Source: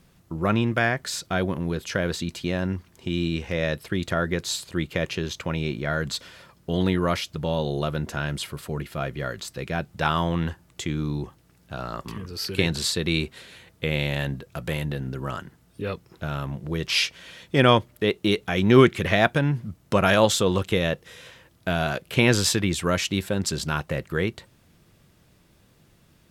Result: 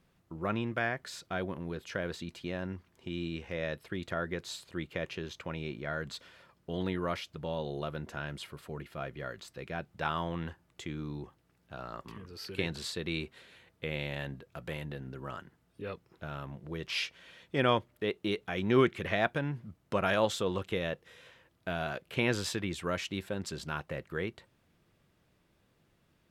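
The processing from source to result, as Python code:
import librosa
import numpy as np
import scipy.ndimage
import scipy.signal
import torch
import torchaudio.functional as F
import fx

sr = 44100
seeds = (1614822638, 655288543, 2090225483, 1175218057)

y = fx.bass_treble(x, sr, bass_db=-4, treble_db=-7)
y = y * librosa.db_to_amplitude(-9.0)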